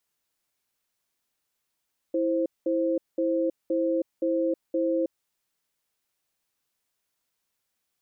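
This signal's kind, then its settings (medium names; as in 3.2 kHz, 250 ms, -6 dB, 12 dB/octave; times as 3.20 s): cadence 329 Hz, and 525 Hz, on 0.32 s, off 0.20 s, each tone -25 dBFS 3.07 s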